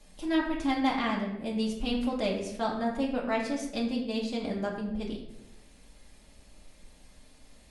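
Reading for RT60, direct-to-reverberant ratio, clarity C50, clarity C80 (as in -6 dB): 0.95 s, -3.0 dB, 5.0 dB, 7.5 dB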